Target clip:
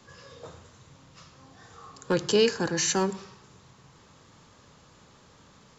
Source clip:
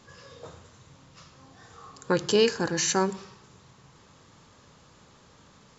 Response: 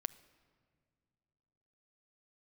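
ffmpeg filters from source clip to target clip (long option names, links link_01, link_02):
-filter_complex "[0:a]acrossover=split=210|530|1700[link_01][link_02][link_03][link_04];[link_03]asoftclip=type=hard:threshold=-28.5dB[link_05];[link_01][link_02][link_05][link_04]amix=inputs=4:normalize=0"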